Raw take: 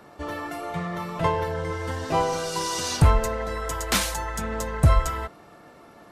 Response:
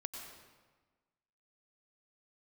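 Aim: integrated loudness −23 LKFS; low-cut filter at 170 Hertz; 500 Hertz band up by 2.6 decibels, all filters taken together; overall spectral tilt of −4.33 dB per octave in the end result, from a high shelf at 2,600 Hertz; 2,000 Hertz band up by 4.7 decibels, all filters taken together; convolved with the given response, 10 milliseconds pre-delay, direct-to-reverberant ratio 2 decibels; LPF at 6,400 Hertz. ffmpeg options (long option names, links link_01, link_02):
-filter_complex "[0:a]highpass=170,lowpass=6400,equalizer=frequency=500:width_type=o:gain=3,equalizer=frequency=2000:width_type=o:gain=7.5,highshelf=frequency=2600:gain=-4.5,asplit=2[link_01][link_02];[1:a]atrim=start_sample=2205,adelay=10[link_03];[link_02][link_03]afir=irnorm=-1:irlink=0,volume=-0.5dB[link_04];[link_01][link_04]amix=inputs=2:normalize=0,volume=1.5dB"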